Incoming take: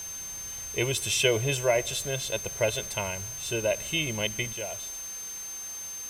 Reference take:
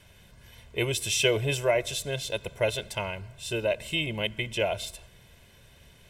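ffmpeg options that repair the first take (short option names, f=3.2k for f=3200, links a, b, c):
-af "bandreject=f=6.3k:w=30,afwtdn=0.0056,asetnsamples=n=441:p=0,asendcmd='4.53 volume volume 10dB',volume=0dB"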